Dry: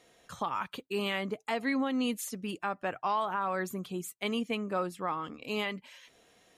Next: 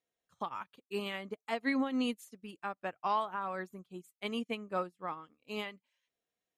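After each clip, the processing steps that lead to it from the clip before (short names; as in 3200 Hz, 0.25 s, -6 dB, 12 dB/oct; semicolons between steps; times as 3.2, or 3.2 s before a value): upward expander 2.5:1, over -47 dBFS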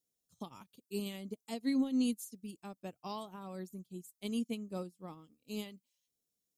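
EQ curve 230 Hz 0 dB, 1600 Hz -22 dB, 5100 Hz +2 dB, 11000 Hz +6 dB; gain +3 dB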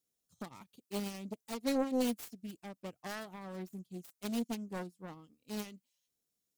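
self-modulated delay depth 0.89 ms; gain +1 dB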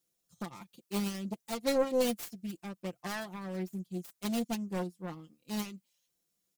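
comb 5.8 ms, depth 55%; gain +3.5 dB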